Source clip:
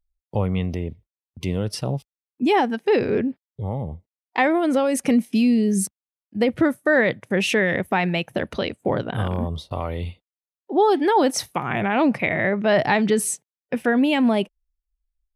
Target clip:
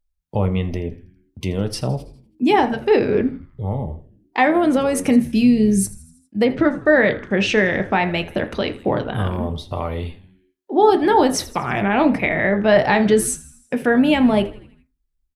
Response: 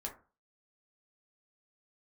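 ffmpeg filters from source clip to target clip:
-filter_complex "[0:a]asettb=1/sr,asplit=3[s0][s1][s2];[s0]atrim=end=6.454[s3];[s1]atrim=start=6.45:end=8.05,asetpts=PTS-STARTPTS,afade=t=in:d=0.004:c=qsin,afade=t=out:st=1.596:d=0.004:c=qsin,lowpass=f=6400:w=0.5412,lowpass=f=6400:w=1.3066[s4];[s2]atrim=start=8.046[s5];[s3][s4]acrossfade=d=0.004:c1=hsin:c2=qsin[s6];[s6][s5]acrossfade=d=0.004:c1=qsin:c2=hsin,asplit=6[s7][s8][s9][s10][s11][s12];[s8]adelay=81,afreqshift=-91,volume=0.119[s13];[s9]adelay=162,afreqshift=-182,volume=0.0668[s14];[s10]adelay=243,afreqshift=-273,volume=0.0372[s15];[s11]adelay=324,afreqshift=-364,volume=0.0209[s16];[s12]adelay=405,afreqshift=-455,volume=0.0117[s17];[s7][s13][s14][s15][s16][s17]amix=inputs=6:normalize=0,asplit=2[s18][s19];[1:a]atrim=start_sample=2205,afade=t=out:st=0.25:d=0.01,atrim=end_sample=11466[s20];[s19][s20]afir=irnorm=-1:irlink=0,volume=1.06[s21];[s18][s21]amix=inputs=2:normalize=0,volume=0.75"

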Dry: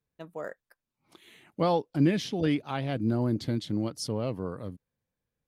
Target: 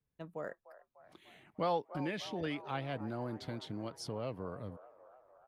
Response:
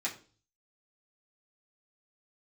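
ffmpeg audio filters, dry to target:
-filter_complex "[0:a]bass=f=250:g=5,treble=f=4000:g=-7,acrossover=split=480|1600[s0][s1][s2];[s0]acompressor=threshold=0.0141:ratio=6[s3];[s1]asplit=9[s4][s5][s6][s7][s8][s9][s10][s11][s12];[s5]adelay=298,afreqshift=37,volume=0.251[s13];[s6]adelay=596,afreqshift=74,volume=0.16[s14];[s7]adelay=894,afreqshift=111,volume=0.102[s15];[s8]adelay=1192,afreqshift=148,volume=0.0661[s16];[s9]adelay=1490,afreqshift=185,volume=0.0422[s17];[s10]adelay=1788,afreqshift=222,volume=0.0269[s18];[s11]adelay=2086,afreqshift=259,volume=0.0172[s19];[s12]adelay=2384,afreqshift=296,volume=0.0111[s20];[s4][s13][s14][s15][s16][s17][s18][s19][s20]amix=inputs=9:normalize=0[s21];[s3][s21][s2]amix=inputs=3:normalize=0,volume=0.596"

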